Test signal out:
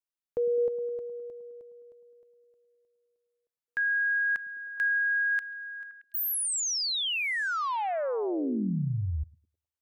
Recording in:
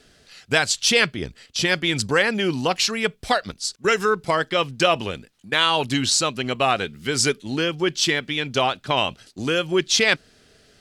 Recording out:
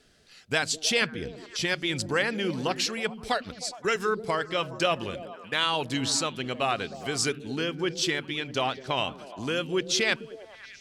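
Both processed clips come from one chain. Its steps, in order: repeats whose band climbs or falls 104 ms, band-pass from 190 Hz, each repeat 0.7 oct, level -6 dB; trim -7 dB

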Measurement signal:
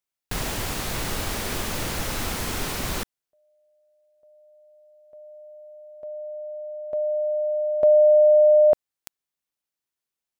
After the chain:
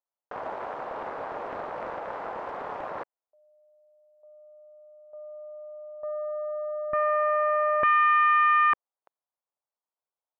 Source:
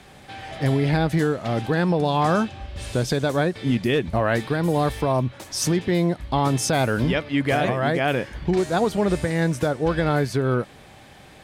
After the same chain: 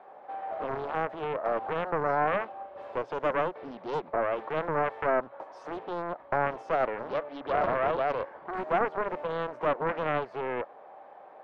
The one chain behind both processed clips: peak limiter -17.5 dBFS; Butterworth band-pass 750 Hz, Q 1.2; loudspeaker Doppler distortion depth 0.59 ms; trim +3 dB

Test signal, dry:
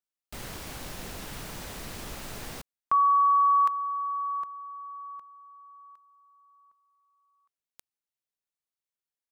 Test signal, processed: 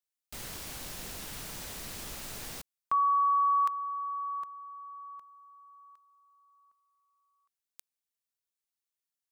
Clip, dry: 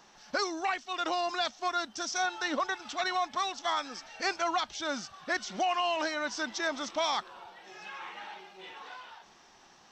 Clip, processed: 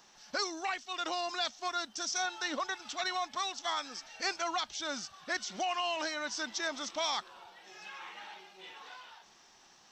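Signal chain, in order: treble shelf 2.9 kHz +8 dB; trim -5.5 dB

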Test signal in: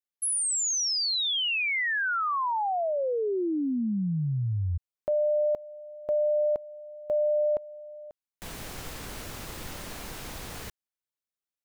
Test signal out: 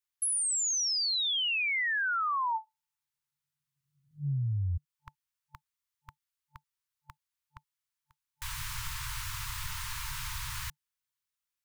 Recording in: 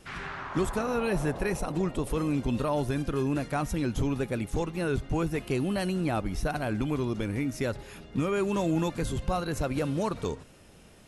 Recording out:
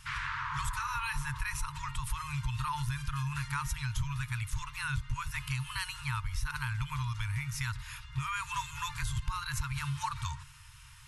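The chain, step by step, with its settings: FFT band-reject 150–880 Hz; compression 2.5:1, threshold -35 dBFS; trim +3.5 dB

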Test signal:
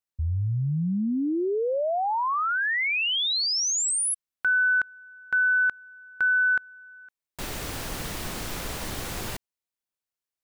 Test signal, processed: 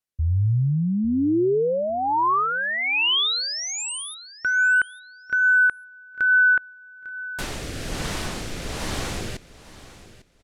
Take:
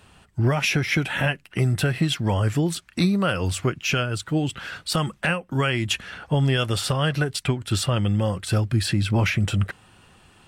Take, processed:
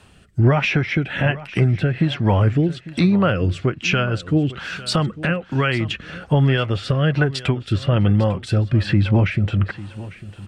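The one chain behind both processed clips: low-pass that closes with the level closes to 2.5 kHz, closed at -19.5 dBFS; rotary cabinet horn 1.2 Hz; feedback delay 850 ms, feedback 22%, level -17 dB; trim +6 dB

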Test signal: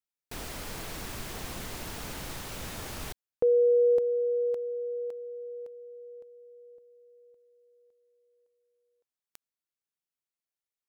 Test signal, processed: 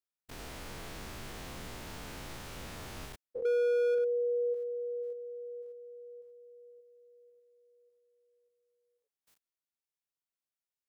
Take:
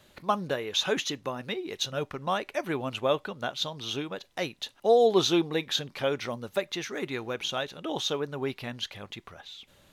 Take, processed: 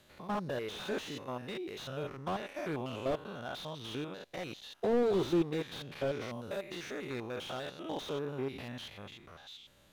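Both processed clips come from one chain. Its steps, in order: spectrogram pixelated in time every 100 ms; slew-rate limiter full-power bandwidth 32 Hz; trim -3 dB

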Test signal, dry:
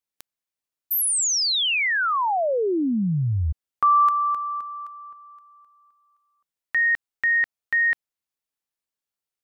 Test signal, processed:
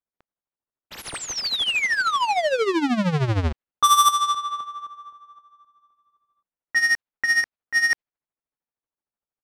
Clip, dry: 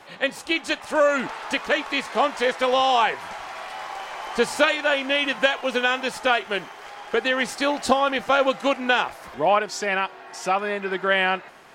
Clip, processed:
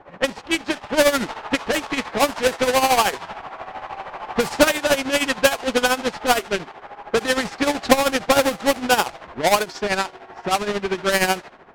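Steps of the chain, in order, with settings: square wave that keeps the level; level-controlled noise filter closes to 1.3 kHz, open at -12.5 dBFS; tremolo 13 Hz, depth 70%; trim +1 dB

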